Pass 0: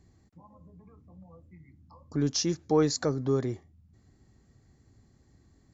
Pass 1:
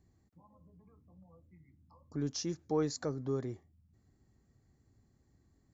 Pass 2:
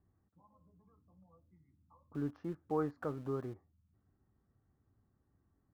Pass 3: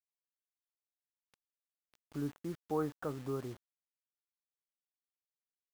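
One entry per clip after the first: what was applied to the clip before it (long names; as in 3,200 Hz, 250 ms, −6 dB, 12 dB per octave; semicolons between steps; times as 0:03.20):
parametric band 3,600 Hz −3 dB 1.8 octaves; level −8 dB
transistor ladder low-pass 1,600 Hz, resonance 45%; tuned comb filter 97 Hz, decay 0.21 s, harmonics all, mix 40%; in parallel at −8 dB: centre clipping without the shift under −53.5 dBFS; on the sum: level +5.5 dB
bit reduction 9 bits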